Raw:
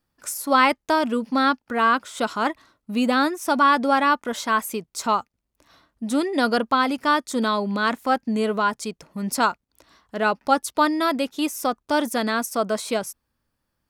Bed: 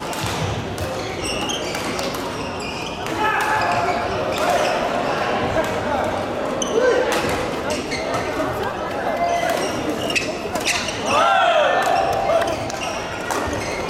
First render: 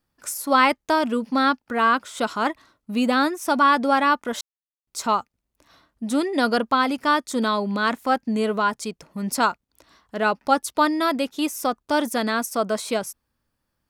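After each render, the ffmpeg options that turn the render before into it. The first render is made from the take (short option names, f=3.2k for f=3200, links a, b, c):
-filter_complex "[0:a]asplit=3[a][b][c];[a]atrim=end=4.41,asetpts=PTS-STARTPTS,afade=t=out:st=4.406:d=0.004:c=hsin[d];[b]atrim=start=4.41:end=4.87,asetpts=PTS-STARTPTS,volume=0[e];[c]atrim=start=4.87,asetpts=PTS-STARTPTS,afade=t=in:d=0.004:c=hsin[f];[d][e][f]concat=n=3:v=0:a=1"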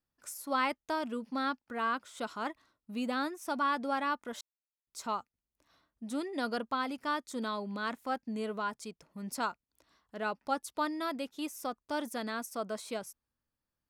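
-af "volume=-13.5dB"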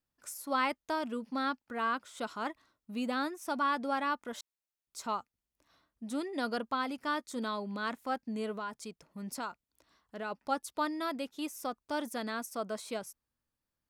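-filter_complex "[0:a]asettb=1/sr,asplit=3[a][b][c];[a]atrim=end=6.994[d];[b]atrim=start=6.99:end=7.39,asetpts=PTS-STARTPTS,afade=t=in:d=0.004:c=qsin,afade=t=out:st=0.396:d=0.004:c=qsin,asplit=2[e][f];[f]adelay=13,volume=-13dB[g];[e][g]amix=inputs=2:normalize=0,atrim=end_sample=17640[h];[c]atrim=start=7.386[i];[d][h]acrossfade=d=0.004:c1=hsin:c2=qsin[j];[j][i]acrossfade=d=0.004:c1=qsin:c2=hsin,asplit=3[k][l][m];[k]afade=t=out:st=8.54:d=0.02[n];[l]acompressor=threshold=-37dB:ratio=2:attack=3.2:release=140:knee=1:detection=peak,afade=t=in:st=8.54:d=0.02,afade=t=out:st=10.3:d=0.02[o];[m]afade=t=in:st=10.3:d=0.02[p];[n][o][p]amix=inputs=3:normalize=0"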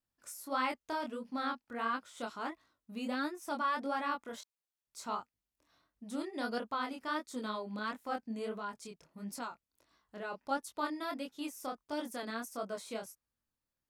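-af "flanger=delay=19.5:depth=7.3:speed=1.5"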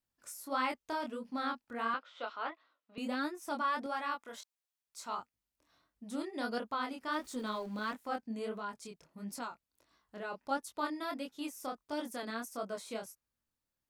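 -filter_complex "[0:a]asettb=1/sr,asplit=3[a][b][c];[a]atrim=end=1.944[d];[b]atrim=start=1.94:end=2.98,asetpts=PTS-STARTPTS,afade=t=in:d=0.004:c=qsin,afade=t=out:st=1.036:d=0.004:c=qsin,highpass=f=330:w=0.5412,highpass=f=330:w=1.3066,equalizer=f=370:t=q:w=4:g=-9,equalizer=f=540:t=q:w=4:g=3,equalizer=f=1.3k:t=q:w=4:g=4,equalizer=f=2.9k:t=q:w=4:g=3,lowpass=f=4.2k:w=0.5412,lowpass=f=4.2k:w=1.3066[e];[c]atrim=start=2.976[f];[d][e]acrossfade=d=0.004:c1=hsin:c2=qsin[g];[g][f]acrossfade=d=0.004:c1=qsin:c2=hsin,asettb=1/sr,asplit=3[h][i][j];[h]atrim=end=3.864[k];[i]atrim=start=3.86:end=5.18,asetpts=PTS-STARTPTS,afade=t=in:d=0.004:c=qsin,afade=t=out:st=1.316:d=0.004:c=qsin,lowshelf=f=390:g=-10[l];[j]atrim=start=5.176[m];[k][l]acrossfade=d=0.004:c1=hsin:c2=qsin[n];[n][m]acrossfade=d=0.004:c1=qsin:c2=hsin,asettb=1/sr,asplit=3[o][p][q];[o]atrim=end=7.124[r];[p]atrim=start=7.12:end=7.95,asetpts=PTS-STARTPTS,afade=t=in:d=0.004:c=qsin,afade=t=out:st=0.826:d=0.004:c=qsin,aeval=exprs='val(0)+0.5*0.00251*sgn(val(0))':c=same[s];[q]atrim=start=7.946[t];[r][s]acrossfade=d=0.004:c1=hsin:c2=qsin[u];[u][t]acrossfade=d=0.004:c1=qsin:c2=hsin"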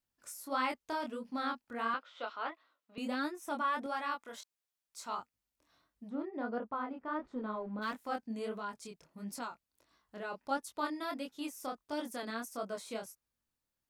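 -filter_complex "[0:a]asettb=1/sr,asplit=3[a][b][c];[a]atrim=end=3.414[d];[b]atrim=start=3.41:end=3.88,asetpts=PTS-STARTPTS,afade=t=in:d=0.004:c=qsin,afade=t=out:st=0.466:d=0.004:c=qsin,equalizer=f=4.7k:t=o:w=0.23:g=-12.5[e];[c]atrim=start=3.876[f];[d][e]acrossfade=d=0.004:c1=hsin:c2=qsin[g];[g][f]acrossfade=d=0.004:c1=qsin:c2=hsin,asplit=3[h][i][j];[h]afade=t=out:st=6.08:d=0.02[k];[i]lowpass=1.3k,afade=t=in:st=6.08:d=0.02,afade=t=out:st=7.81:d=0.02[l];[j]afade=t=in:st=7.81:d=0.02[m];[k][l][m]amix=inputs=3:normalize=0"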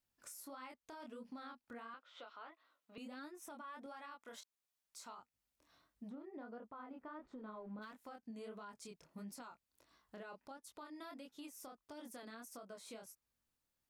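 -af "acompressor=threshold=-40dB:ratio=6,alimiter=level_in=18.5dB:limit=-24dB:level=0:latency=1:release=313,volume=-18.5dB"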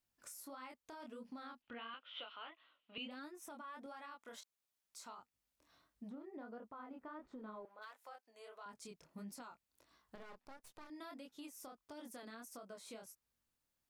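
-filter_complex "[0:a]asettb=1/sr,asplit=3[a][b][c];[a]atrim=end=1.624[d];[b]atrim=start=1.62:end=3.11,asetpts=PTS-STARTPTS,afade=t=in:d=0.004:c=qsin,afade=t=out:st=1.486:d=0.004:c=qsin,lowpass=f=3k:t=q:w=6.1[e];[c]atrim=start=3.106[f];[d][e]acrossfade=d=0.004:c1=hsin:c2=qsin[g];[g][f]acrossfade=d=0.004:c1=qsin:c2=hsin,asettb=1/sr,asplit=3[h][i][j];[h]atrim=end=7.654[k];[i]atrim=start=7.65:end=8.66,asetpts=PTS-STARTPTS,afade=t=in:d=0.004:c=qsin,afade=t=out:st=1.006:d=0.004:c=qsin,highpass=f=520:w=0.5412,highpass=f=520:w=1.3066[l];[j]atrim=start=8.656[m];[k][l]acrossfade=d=0.004:c1=hsin:c2=qsin[n];[n][m]acrossfade=d=0.004:c1=qsin:c2=hsin,asettb=1/sr,asplit=3[o][p][q];[o]atrim=end=10.154[r];[p]atrim=start=10.15:end=10.9,asetpts=PTS-STARTPTS,afade=t=in:d=0.004:c=qsin,afade=t=out:st=0.746:d=0.004:c=qsin,aeval=exprs='max(val(0),0)':c=same[s];[q]atrim=start=10.896[t];[r][s]acrossfade=d=0.004:c1=hsin:c2=qsin[u];[u][t]acrossfade=d=0.004:c1=qsin:c2=hsin"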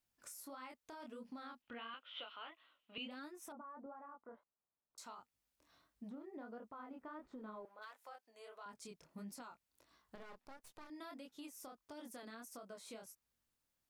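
-filter_complex "[0:a]asettb=1/sr,asplit=3[a][b][c];[a]atrim=end=3.524[d];[b]atrim=start=3.52:end=4.98,asetpts=PTS-STARTPTS,afade=t=in:d=0.004:c=qsin,afade=t=out:st=1.456:d=0.004:c=qsin,lowpass=f=1.2k:w=0.5412,lowpass=f=1.2k:w=1.3066[e];[c]atrim=start=4.976[f];[d][e]acrossfade=d=0.004:c1=hsin:c2=qsin[g];[g][f]acrossfade=d=0.004:c1=qsin:c2=hsin"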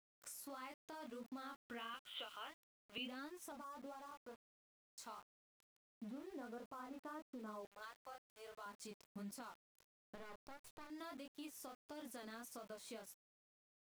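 -af "aeval=exprs='val(0)*gte(abs(val(0)),0.00112)':c=same"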